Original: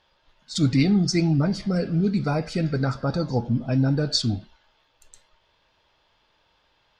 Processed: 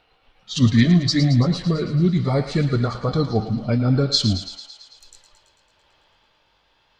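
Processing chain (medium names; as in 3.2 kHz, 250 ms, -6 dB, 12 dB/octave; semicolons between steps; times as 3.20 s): pitch bend over the whole clip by -3 st ending unshifted; thinning echo 111 ms, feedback 69%, high-pass 690 Hz, level -10 dB; trim +5 dB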